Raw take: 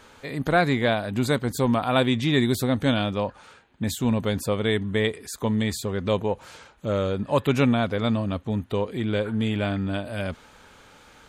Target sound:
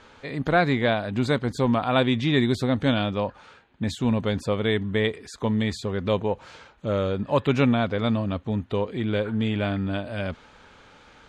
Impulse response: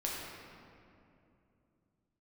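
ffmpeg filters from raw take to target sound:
-af "lowpass=5.1k"

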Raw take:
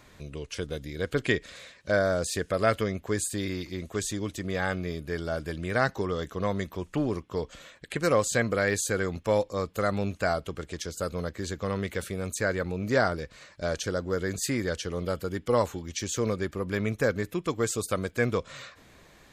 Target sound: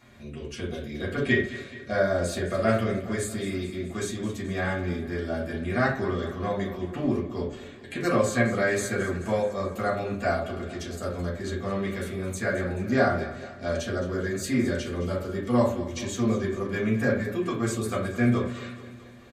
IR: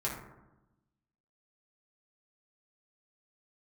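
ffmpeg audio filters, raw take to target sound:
-filter_complex "[0:a]aecho=1:1:215|430|645|860|1075|1290:0.178|0.101|0.0578|0.0329|0.0188|0.0107[a];[1:a]atrim=start_sample=2205,afade=t=out:st=0.31:d=0.01,atrim=end_sample=14112,asetrate=79380,aresample=44100[b];[a][b]afir=irnorm=-1:irlink=0"

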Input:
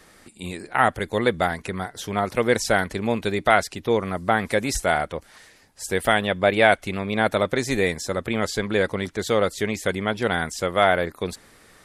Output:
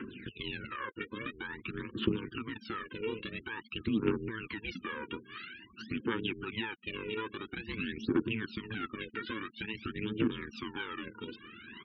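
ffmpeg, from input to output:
-filter_complex "[0:a]asplit=2[a][b];[b]acrusher=bits=4:dc=4:mix=0:aa=0.000001,volume=-9dB[c];[a][c]amix=inputs=2:normalize=0,asettb=1/sr,asplit=3[d][e][f];[d]atrim=end=9.124[g];[e]atrim=start=9.12:end=9.53,asetpts=PTS-STARTPTS,afade=t=in:d=0.004:c=qsin,afade=t=out:st=0.406:d=0.004:c=qsin,equalizer=f=1.7k:w=2.3:g=10.5[h];[f]atrim=start=9.526[i];[g][h]acrossfade=d=0.004:c1=hsin:c2=qsin[j];[j][i]acrossfade=d=0.004:c1=qsin:c2=hsin,acompressor=threshold=-30dB:ratio=20,alimiter=level_in=4.5dB:limit=-24dB:level=0:latency=1:release=211,volume=-4.5dB,aeval=exprs='val(0)*sin(2*PI*220*n/s)':c=same,highpass=120,equalizer=f=150:t=q:w=4:g=-6,equalizer=f=230:t=q:w=4:g=6,equalizer=f=350:t=q:w=4:g=7,equalizer=f=650:t=q:w=4:g=7,equalizer=f=2k:t=q:w=4:g=-6,equalizer=f=2.8k:t=q:w=4:g=8,lowpass=f=3.3k:w=0.5412,lowpass=f=3.3k:w=1.3066,aphaser=in_gain=1:out_gain=1:delay=2.2:decay=0.75:speed=0.49:type=triangular,asuperstop=centerf=670:order=4:qfactor=0.89,asplit=2[k][l];[l]adelay=1054,lowpass=f=880:p=1,volume=-20dB,asplit=2[m][n];[n]adelay=1054,lowpass=f=880:p=1,volume=0.32,asplit=2[o][p];[p]adelay=1054,lowpass=f=880:p=1,volume=0.32[q];[k][m][o][q]amix=inputs=4:normalize=0,afftfilt=real='re*gte(hypot(re,im),0.002)':imag='im*gte(hypot(re,im),0.002)':win_size=1024:overlap=0.75,volume=6dB"

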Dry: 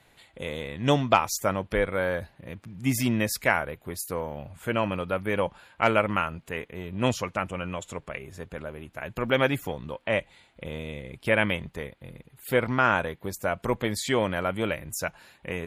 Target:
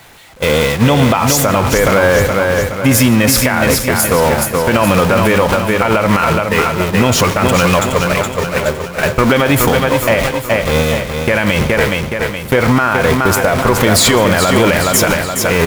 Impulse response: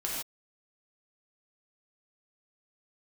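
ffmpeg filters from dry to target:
-filter_complex "[0:a]aeval=exprs='val(0)+0.5*0.0376*sgn(val(0))':c=same,agate=range=-28dB:threshold=-29dB:ratio=16:detection=peak,equalizer=f=1.1k:t=o:w=1.4:g=3,acompressor=threshold=-24dB:ratio=6,aecho=1:1:420|840|1260|1680|2100|2520:0.473|0.222|0.105|0.0491|0.0231|0.0109,asplit=2[a][b];[1:a]atrim=start_sample=2205[c];[b][c]afir=irnorm=-1:irlink=0,volume=-18dB[d];[a][d]amix=inputs=2:normalize=0,alimiter=level_in=20dB:limit=-1dB:release=50:level=0:latency=1,volume=-1dB"

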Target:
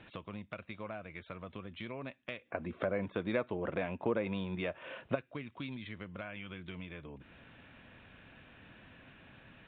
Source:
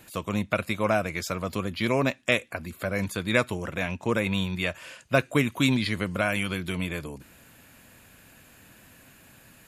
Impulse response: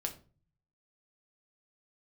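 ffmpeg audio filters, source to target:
-filter_complex "[0:a]aresample=8000,aresample=44100,acompressor=threshold=-44dB:ratio=3,asplit=3[a][b][c];[a]afade=t=out:st=2.45:d=0.02[d];[b]equalizer=f=490:w=0.38:g=13.5,afade=t=in:st=2.45:d=0.02,afade=t=out:st=5.14:d=0.02[e];[c]afade=t=in:st=5.14:d=0.02[f];[d][e][f]amix=inputs=3:normalize=0,volume=-2dB"

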